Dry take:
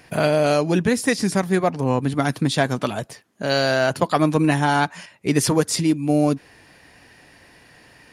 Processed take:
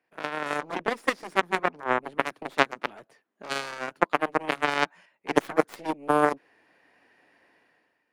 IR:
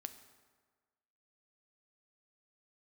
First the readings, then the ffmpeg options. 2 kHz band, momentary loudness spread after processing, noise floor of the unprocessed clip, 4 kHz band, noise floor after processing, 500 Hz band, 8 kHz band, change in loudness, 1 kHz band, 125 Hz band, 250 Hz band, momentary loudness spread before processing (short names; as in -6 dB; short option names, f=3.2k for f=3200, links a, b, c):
-3.0 dB, 9 LU, -52 dBFS, -8.5 dB, -76 dBFS, -8.0 dB, -16.5 dB, -7.0 dB, -3.0 dB, -21.0 dB, -13.0 dB, 8 LU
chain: -filter_complex "[0:a]aeval=exprs='0.708*(cos(1*acos(clip(val(0)/0.708,-1,1)))-cos(1*PI/2))+0.251*(cos(3*acos(clip(val(0)/0.708,-1,1)))-cos(3*PI/2))+0.0112*(cos(6*acos(clip(val(0)/0.708,-1,1)))-cos(6*PI/2))':c=same,acrossover=split=230 2800:gain=0.1 1 0.224[a][b][c];[a][b][c]amix=inputs=3:normalize=0,dynaudnorm=f=110:g=9:m=15dB,volume=-1dB"